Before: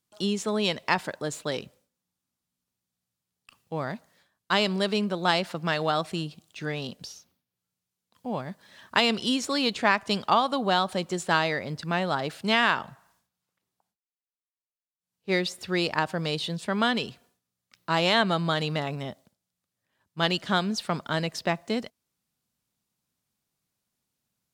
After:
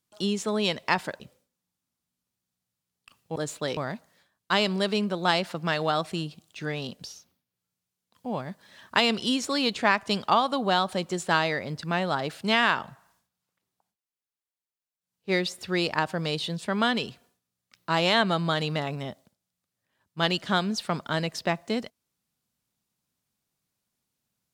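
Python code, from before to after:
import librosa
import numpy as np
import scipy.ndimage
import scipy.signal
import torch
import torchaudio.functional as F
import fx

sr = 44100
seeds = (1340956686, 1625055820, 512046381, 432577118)

y = fx.edit(x, sr, fx.move(start_s=1.2, length_s=0.41, to_s=3.77), tone=tone)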